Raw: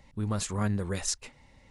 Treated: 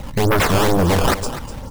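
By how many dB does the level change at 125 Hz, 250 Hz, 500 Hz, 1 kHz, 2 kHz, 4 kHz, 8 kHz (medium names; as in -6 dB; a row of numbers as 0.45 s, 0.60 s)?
+12.0 dB, +12.5 dB, +19.5 dB, +20.5 dB, +20.0 dB, +14.0 dB, +5.5 dB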